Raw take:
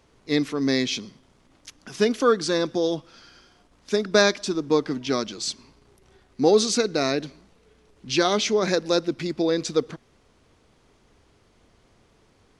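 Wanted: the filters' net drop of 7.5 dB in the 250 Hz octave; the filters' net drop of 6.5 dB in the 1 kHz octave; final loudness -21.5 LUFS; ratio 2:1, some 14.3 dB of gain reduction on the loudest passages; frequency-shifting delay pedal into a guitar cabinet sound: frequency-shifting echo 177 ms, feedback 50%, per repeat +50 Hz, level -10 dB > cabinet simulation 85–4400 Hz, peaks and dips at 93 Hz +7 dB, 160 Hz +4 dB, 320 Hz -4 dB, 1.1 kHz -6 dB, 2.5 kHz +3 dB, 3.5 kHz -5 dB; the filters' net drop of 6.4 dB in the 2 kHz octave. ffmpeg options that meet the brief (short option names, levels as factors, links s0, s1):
-filter_complex "[0:a]equalizer=f=250:t=o:g=-8,equalizer=f=1000:t=o:g=-4,equalizer=f=2000:t=o:g=-7,acompressor=threshold=0.00631:ratio=2,asplit=6[s0][s1][s2][s3][s4][s5];[s1]adelay=177,afreqshift=50,volume=0.316[s6];[s2]adelay=354,afreqshift=100,volume=0.158[s7];[s3]adelay=531,afreqshift=150,volume=0.0794[s8];[s4]adelay=708,afreqshift=200,volume=0.0394[s9];[s5]adelay=885,afreqshift=250,volume=0.0197[s10];[s0][s6][s7][s8][s9][s10]amix=inputs=6:normalize=0,highpass=85,equalizer=f=93:t=q:w=4:g=7,equalizer=f=160:t=q:w=4:g=4,equalizer=f=320:t=q:w=4:g=-4,equalizer=f=1100:t=q:w=4:g=-6,equalizer=f=2500:t=q:w=4:g=3,equalizer=f=3500:t=q:w=4:g=-5,lowpass=f=4400:w=0.5412,lowpass=f=4400:w=1.3066,volume=8.91"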